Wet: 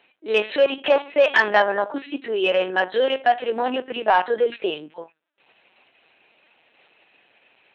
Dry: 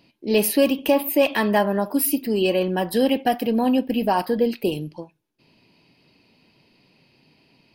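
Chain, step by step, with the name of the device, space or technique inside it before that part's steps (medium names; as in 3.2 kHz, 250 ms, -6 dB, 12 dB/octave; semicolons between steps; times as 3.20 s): talking toy (LPC vocoder at 8 kHz pitch kept; high-pass 540 Hz 12 dB/octave; peaking EQ 1.6 kHz +7 dB 0.58 oct; saturation -10.5 dBFS, distortion -22 dB); trim +5.5 dB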